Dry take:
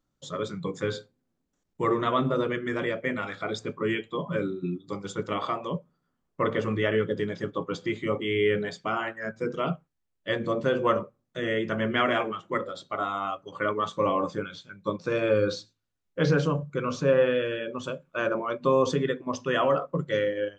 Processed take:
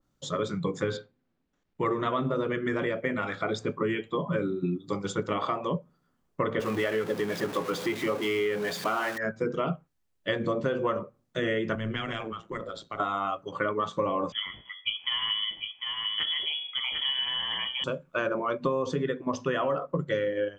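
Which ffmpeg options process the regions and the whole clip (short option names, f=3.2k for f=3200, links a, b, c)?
-filter_complex "[0:a]asettb=1/sr,asplit=3[a][b][c];[a]atrim=end=0.974[d];[b]atrim=start=0.97:end=1.86,asetpts=PTS-STARTPTS,afade=t=in:d=0.004:c=qsin,afade=t=out:st=0.886:d=0.004:c=qsin,lowpass=3k,tiltshelf=f=1.4k:g=-3.5[e];[c]atrim=start=1.856[f];[d][e]acrossfade=d=0.004:c1=hsin:c2=qsin[g];[g][f]acrossfade=d=0.004:c1=qsin:c2=hsin,asettb=1/sr,asplit=3[h][i][j];[h]atrim=end=6.604[k];[i]atrim=start=6.6:end=9.18,asetpts=PTS-STARTPTS,afade=t=in:d=0.004:c=qsin,afade=t=out:st=2.576:d=0.004:c=qsin,aeval=exprs='val(0)+0.5*0.0237*sgn(val(0))':c=same,highpass=f=340:p=1[l];[j]atrim=start=9.176[m];[k][l]acrossfade=d=0.004:c1=hsin:c2=qsin[n];[n][m]acrossfade=d=0.004:c1=qsin:c2=hsin,asettb=1/sr,asplit=3[o][p][q];[o]atrim=end=11.754[r];[p]atrim=start=11.75:end=13,asetpts=PTS-STARTPTS,afade=t=in:d=0.004:c=qsin,afade=t=out:st=1.246:d=0.004:c=qsin,bandreject=f=610:w=18,tremolo=f=110:d=0.621,acrossover=split=170|3000[s][t][u];[t]acompressor=threshold=-37dB:ratio=6:attack=3.2:release=140:knee=2.83:detection=peak[v];[s][v][u]amix=inputs=3:normalize=0[w];[q]atrim=start=12.996[x];[r][w]acrossfade=d=0.004:c1=hsin:c2=qsin[y];[y][x]acrossfade=d=0.004:c1=qsin:c2=hsin,asettb=1/sr,asplit=3[z][aa][ab];[z]atrim=end=14.324[ac];[aa]atrim=start=14.32:end=17.84,asetpts=PTS-STARTPTS,afade=t=in:d=0.004:c=qsin,afade=t=out:st=3.516:d=0.004:c=qsin,bandreject=f=84.78:t=h:w=4,bandreject=f=169.56:t=h:w=4,bandreject=f=254.34:t=h:w=4,bandreject=f=339.12:t=h:w=4,bandreject=f=423.9:t=h:w=4,bandreject=f=508.68:t=h:w=4,bandreject=f=593.46:t=h:w=4,bandreject=f=678.24:t=h:w=4,bandreject=f=763.02:t=h:w=4,bandreject=f=847.8:t=h:w=4,bandreject=f=932.58:t=h:w=4,bandreject=f=1.01736k:t=h:w=4,bandreject=f=1.10214k:t=h:w=4,bandreject=f=1.18692k:t=h:w=4,bandreject=f=1.2717k:t=h:w=4,bandreject=f=1.35648k:t=h:w=4,bandreject=f=1.44126k:t=h:w=4,bandreject=f=1.52604k:t=h:w=4,bandreject=f=1.61082k:t=h:w=4,bandreject=f=1.6956k:t=h:w=4,bandreject=f=1.78038k:t=h:w=4,bandreject=f=1.86516k:t=h:w=4,bandreject=f=1.94994k:t=h:w=4,bandreject=f=2.03472k:t=h:w=4,bandreject=f=2.1195k:t=h:w=4,bandreject=f=2.20428k:t=h:w=4,bandreject=f=2.28906k:t=h:w=4,bandreject=f=2.37384k:t=h:w=4,bandreject=f=2.45862k:t=h:w=4,bandreject=f=2.5434k:t=h:w=4,bandreject=f=2.62818k:t=h:w=4,bandreject=f=2.71296k:t=h:w=4,bandreject=f=2.79774k:t=h:w=4,bandreject=f=2.88252k:t=h:w=4,bandreject=f=2.9673k:t=h:w=4,bandreject=f=3.05208k:t=h:w=4,bandreject=f=3.13686k:t=h:w=4,lowpass=f=3k:t=q:w=0.5098,lowpass=f=3k:t=q:w=0.6013,lowpass=f=3k:t=q:w=0.9,lowpass=f=3k:t=q:w=2.563,afreqshift=-3500,aecho=1:1:748:0.376,atrim=end_sample=155232[ad];[ab]atrim=start=17.836[ae];[ac][ad]acrossfade=d=0.004:c1=hsin:c2=qsin[af];[af][ae]acrossfade=d=0.004:c1=qsin:c2=hsin,acompressor=threshold=-29dB:ratio=6,adynamicequalizer=threshold=0.00316:dfrequency=2200:dqfactor=0.7:tfrequency=2200:tqfactor=0.7:attack=5:release=100:ratio=0.375:range=2:mode=cutabove:tftype=highshelf,volume=4.5dB"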